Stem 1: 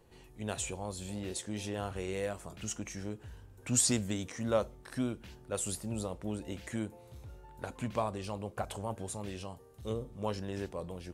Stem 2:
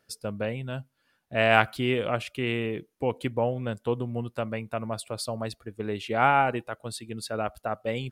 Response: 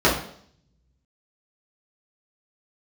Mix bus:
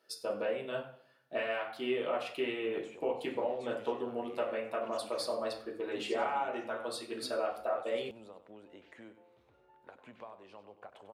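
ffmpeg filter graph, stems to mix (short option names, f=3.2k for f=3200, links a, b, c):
-filter_complex "[0:a]highpass=80,acrossover=split=290 3600:gain=0.126 1 0.0794[a][b][c];[a][b][c]amix=inputs=3:normalize=0,acompressor=threshold=-45dB:ratio=2,adelay=2250,volume=-6.5dB,asplit=2[d][e];[e]volume=-12dB[f];[1:a]lowshelf=f=230:g=-10,acompressor=threshold=-32dB:ratio=12,bass=f=250:g=-14,treble=f=4k:g=-2,volume=-5.5dB,asplit=3[g][h][i];[h]volume=-14dB[j];[i]volume=-20dB[k];[2:a]atrim=start_sample=2205[l];[j][l]afir=irnorm=-1:irlink=0[m];[f][k]amix=inputs=2:normalize=0,aecho=0:1:97|194|291|388:1|0.3|0.09|0.027[n];[d][g][m][n]amix=inputs=4:normalize=0"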